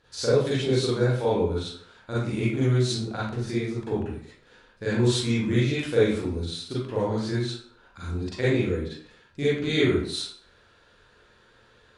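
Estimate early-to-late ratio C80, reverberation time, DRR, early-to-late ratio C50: 3.5 dB, 0.55 s, −9.0 dB, −2.0 dB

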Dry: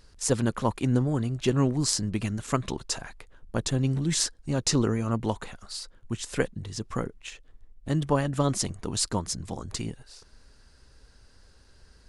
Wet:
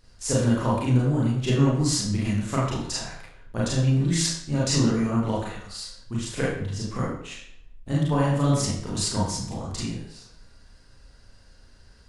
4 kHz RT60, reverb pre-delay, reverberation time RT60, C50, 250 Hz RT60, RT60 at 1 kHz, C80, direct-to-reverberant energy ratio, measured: 0.55 s, 30 ms, 0.65 s, 1.5 dB, 0.65 s, 0.65 s, 5.0 dB, −7.0 dB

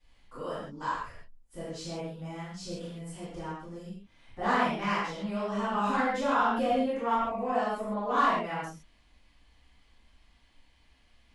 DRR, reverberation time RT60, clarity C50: −17.0 dB, non-exponential decay, −2.5 dB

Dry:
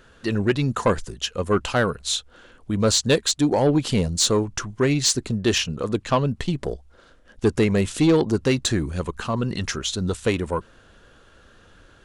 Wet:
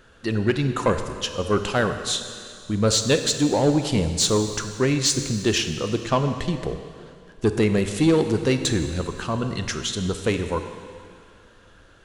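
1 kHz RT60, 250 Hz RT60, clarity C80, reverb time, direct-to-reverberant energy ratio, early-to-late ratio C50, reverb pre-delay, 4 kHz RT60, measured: 2.3 s, 1.9 s, 9.0 dB, 2.2 s, 7.5 dB, 8.0 dB, 28 ms, 2.3 s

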